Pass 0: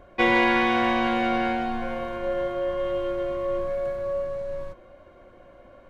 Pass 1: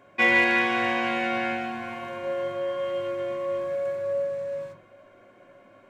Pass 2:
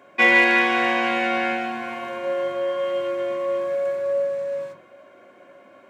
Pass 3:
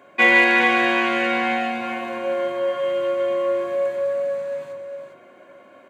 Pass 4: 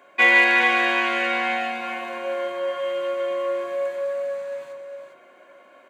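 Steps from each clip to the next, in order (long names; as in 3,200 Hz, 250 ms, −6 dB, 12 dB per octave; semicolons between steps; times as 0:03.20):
hard clipping −10.5 dBFS, distortion −38 dB; convolution reverb RT60 0.40 s, pre-delay 3 ms, DRR 5.5 dB
high-pass filter 210 Hz 12 dB per octave; level +4.5 dB
notch filter 5,400 Hz, Q 7.6; on a send: single-tap delay 404 ms −8 dB; on the sum: level +1 dB
high-pass filter 630 Hz 6 dB per octave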